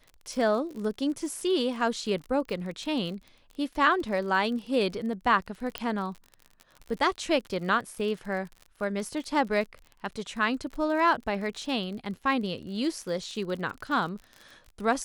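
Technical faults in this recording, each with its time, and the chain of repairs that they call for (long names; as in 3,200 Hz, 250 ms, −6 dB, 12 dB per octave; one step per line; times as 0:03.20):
surface crackle 42 per second −36 dBFS
0:05.78: click −14 dBFS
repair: click removal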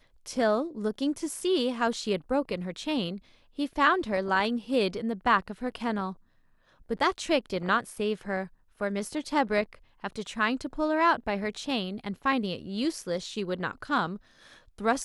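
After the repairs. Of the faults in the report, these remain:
none of them is left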